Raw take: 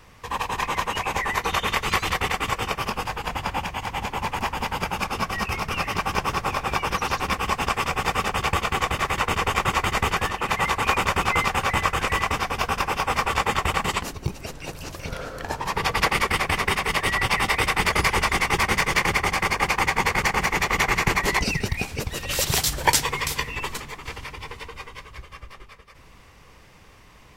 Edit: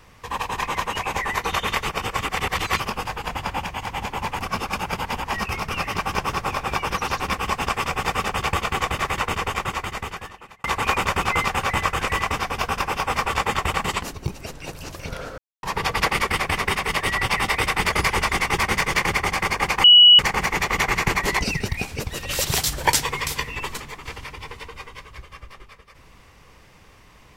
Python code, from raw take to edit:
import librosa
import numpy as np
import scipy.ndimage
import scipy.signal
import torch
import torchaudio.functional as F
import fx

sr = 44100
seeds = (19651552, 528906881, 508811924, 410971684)

y = fx.edit(x, sr, fx.reverse_span(start_s=1.89, length_s=0.91),
    fx.reverse_span(start_s=4.43, length_s=0.91),
    fx.fade_out_span(start_s=9.1, length_s=1.54),
    fx.silence(start_s=15.38, length_s=0.25),
    fx.bleep(start_s=19.84, length_s=0.35, hz=2930.0, db=-6.5), tone=tone)